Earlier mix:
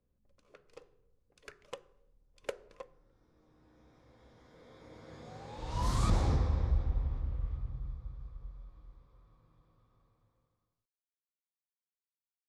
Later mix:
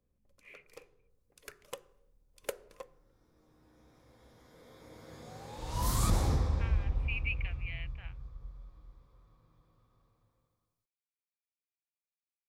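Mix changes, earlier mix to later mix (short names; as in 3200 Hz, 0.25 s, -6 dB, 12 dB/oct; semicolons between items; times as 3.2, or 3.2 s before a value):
speech: unmuted; master: remove air absorption 83 m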